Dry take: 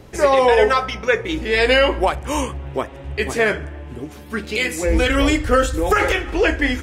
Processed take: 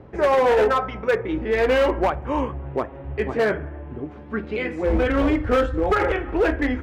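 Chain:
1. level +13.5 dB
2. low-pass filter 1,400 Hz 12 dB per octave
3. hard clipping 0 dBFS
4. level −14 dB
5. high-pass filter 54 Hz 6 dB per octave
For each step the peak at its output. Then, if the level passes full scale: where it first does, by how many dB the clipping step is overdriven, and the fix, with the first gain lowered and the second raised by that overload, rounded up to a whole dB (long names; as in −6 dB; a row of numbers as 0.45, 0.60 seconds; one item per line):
+10.0, +9.0, 0.0, −14.0, −10.5 dBFS
step 1, 9.0 dB
step 1 +4.5 dB, step 4 −5 dB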